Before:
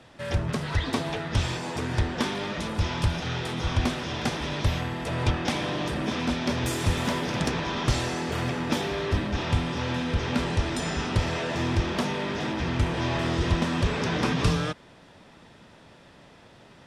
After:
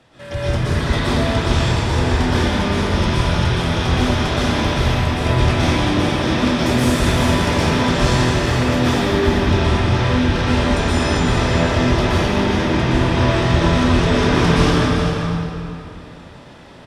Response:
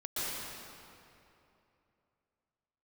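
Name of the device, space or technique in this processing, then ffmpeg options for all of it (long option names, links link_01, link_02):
cave: -filter_complex "[0:a]aecho=1:1:392:0.376[link_01];[1:a]atrim=start_sample=2205[link_02];[link_01][link_02]afir=irnorm=-1:irlink=0,volume=4dB"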